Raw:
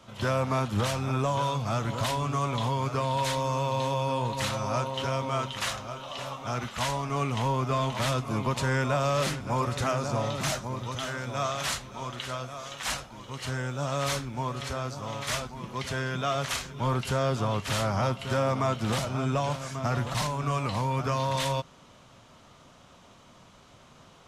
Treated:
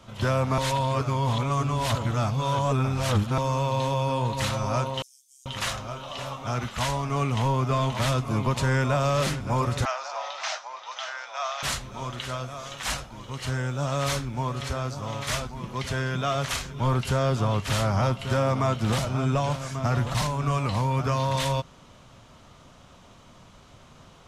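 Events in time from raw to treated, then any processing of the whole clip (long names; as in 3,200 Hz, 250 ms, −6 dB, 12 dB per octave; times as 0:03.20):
0:00.58–0:03.38: reverse
0:05.02–0:05.46: inverse Chebyshev high-pass filter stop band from 1,400 Hz, stop band 80 dB
0:09.85–0:11.63: elliptic band-pass filter 720–5,800 Hz, stop band 60 dB
whole clip: low-shelf EQ 94 Hz +9 dB; level +1.5 dB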